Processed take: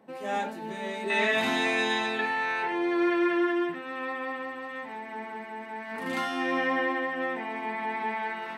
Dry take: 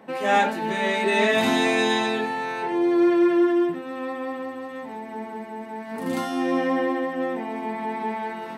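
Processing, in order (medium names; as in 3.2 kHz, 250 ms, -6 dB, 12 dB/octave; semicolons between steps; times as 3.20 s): peaking EQ 2 kHz -4 dB 2.4 oct, from 1.10 s +7 dB, from 2.19 s +13 dB; trim -9 dB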